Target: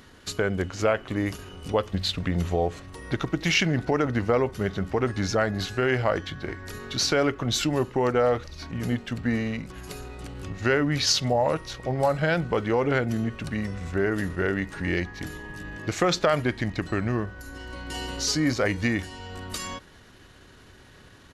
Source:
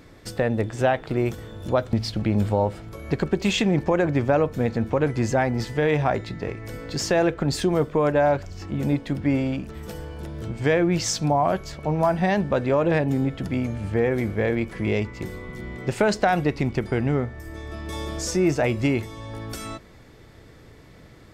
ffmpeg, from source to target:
ffmpeg -i in.wav -af "asetrate=37084,aresample=44100,atempo=1.18921,tiltshelf=frequency=970:gain=-4.5" out.wav

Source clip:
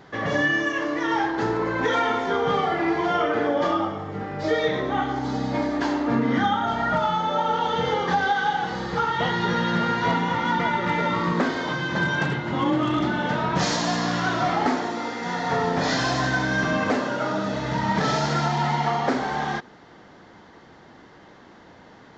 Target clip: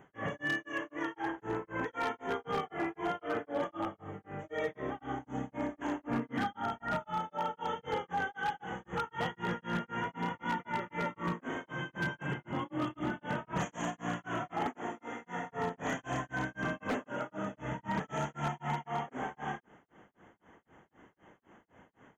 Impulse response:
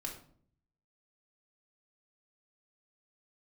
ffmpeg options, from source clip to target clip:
-af "tremolo=f=3.9:d=1,asuperstop=centerf=4500:order=12:qfactor=1.6,aeval=exprs='0.141*(abs(mod(val(0)/0.141+3,4)-2)-1)':channel_layout=same,volume=-8.5dB"

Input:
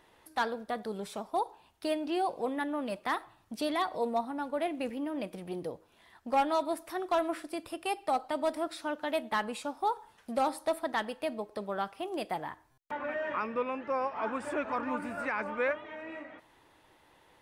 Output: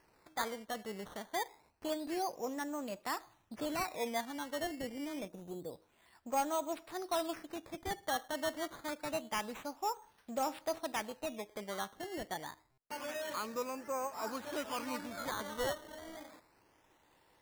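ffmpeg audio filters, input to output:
ffmpeg -i in.wav -filter_complex "[0:a]acrusher=samples=12:mix=1:aa=0.000001:lfo=1:lforange=12:lforate=0.27,asettb=1/sr,asplit=3[link_01][link_02][link_03];[link_01]atrim=end=5.284[link_04];[link_02]atrim=start=5.28:end=5.73,asetpts=PTS-STARTPTS,afade=type=in:duration=0.004:curve=qsin,afade=type=out:start_time=0.446:duration=0.004:curve=qsin,equalizer=frequency=2800:width=0.88:gain=-11.5[link_05];[link_03]atrim=start=5.726[link_06];[link_04][link_05]acrossfade=duration=0.004:curve1=hsin:curve2=qsin[link_07];[link_07][link_06]acrossfade=duration=0.004:curve1=qsin:curve2=hsin,volume=-6dB" out.wav

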